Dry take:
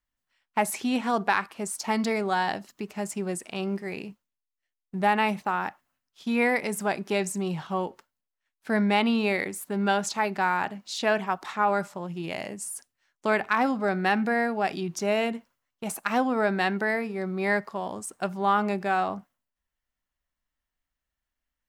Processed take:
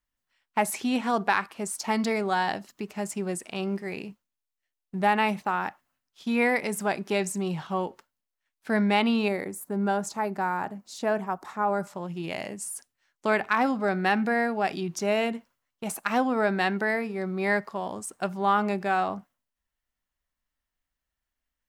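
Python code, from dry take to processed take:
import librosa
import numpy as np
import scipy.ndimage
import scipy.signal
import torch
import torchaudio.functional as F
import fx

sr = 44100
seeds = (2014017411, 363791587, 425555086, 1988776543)

y = fx.peak_eq(x, sr, hz=3100.0, db=-13.0, octaves=1.8, at=(9.28, 11.87))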